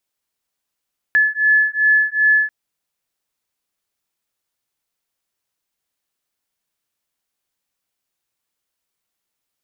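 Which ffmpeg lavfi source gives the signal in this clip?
-f lavfi -i "aevalsrc='0.168*(sin(2*PI*1720*t)+sin(2*PI*1722.6*t))':d=1.34:s=44100"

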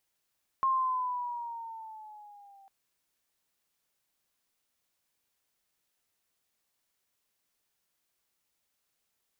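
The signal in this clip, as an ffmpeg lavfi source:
-f lavfi -i "aevalsrc='pow(10,(-23-31*t/2.05)/20)*sin(2*PI*1070*2.05/(-5.5*log(2)/12)*(exp(-5.5*log(2)/12*t/2.05)-1))':d=2.05:s=44100"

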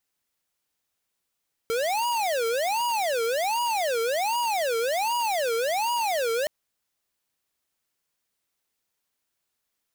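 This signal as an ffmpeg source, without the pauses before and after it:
-f lavfi -i "aevalsrc='0.0531*(2*lt(mod((708*t-255/(2*PI*1.3)*sin(2*PI*1.3*t)),1),0.5)-1)':d=4.77:s=44100"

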